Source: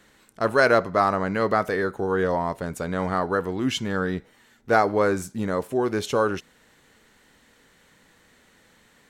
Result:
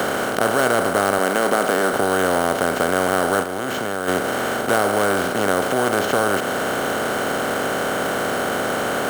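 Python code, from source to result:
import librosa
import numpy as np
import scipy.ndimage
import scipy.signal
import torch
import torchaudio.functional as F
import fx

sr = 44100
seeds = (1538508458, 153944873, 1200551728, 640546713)

y = fx.bin_compress(x, sr, power=0.2)
y = fx.highpass(y, sr, hz=160.0, slope=24, at=(1.18, 1.93))
y = fx.level_steps(y, sr, step_db=22, at=(3.42, 4.07), fade=0.02)
y = fx.sample_hold(y, sr, seeds[0], rate_hz=9700.0, jitter_pct=0)
y = fx.band_squash(y, sr, depth_pct=40)
y = y * 10.0 ** (-5.5 / 20.0)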